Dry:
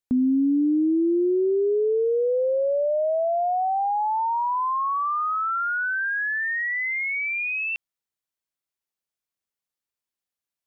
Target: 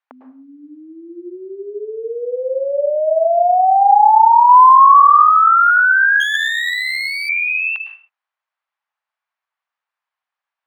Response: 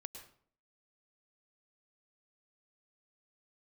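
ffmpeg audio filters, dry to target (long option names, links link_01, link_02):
-filter_complex "[0:a]asettb=1/sr,asplit=3[link_01][link_02][link_03];[link_01]atrim=end=4.494[link_04];[link_02]atrim=start=4.49:end=5.01,asetpts=PTS-STARTPTS,afade=type=in:duration=0.004:curve=qsin,afade=type=out:start_time=0.516:duration=0.004:curve=qsin,acontrast=82[link_05];[link_03]atrim=start=5.006[link_06];[link_04][link_05]acrossfade=duration=0.004:curve1=hsin:curve2=qsin[link_07];[link_07][link_06]acrossfade=duration=0.004:curve1=qsin:curve2=hsin,lowpass=1600[link_08];[1:a]atrim=start_sample=2205,afade=type=out:start_time=0.38:duration=0.01,atrim=end_sample=17199[link_09];[link_08][link_09]afir=irnorm=-1:irlink=0,asettb=1/sr,asplit=3[link_10][link_11][link_12];[link_10]atrim=end=6.204[link_13];[link_11]atrim=start=6.2:end=7.29,asetpts=PTS-STARTPTS,afade=type=in:duration=0.004:curve=qsin,afade=type=out:start_time=1.086:duration=0.004:curve=qsin,aeval=exprs='max(val(0),0)':channel_layout=same[link_14];[link_12]atrim=start=7.286[link_15];[link_13][link_14]acrossfade=duration=0.004:curve1=hsin:curve2=qsin[link_16];[link_16][link_15]acrossfade=duration=0.004:curve1=qsin:curve2=hsin,highpass=frequency=810:width=0.5412,highpass=frequency=810:width=1.3066,alimiter=level_in=22dB:limit=-1dB:release=50:level=0:latency=1,volume=-1dB"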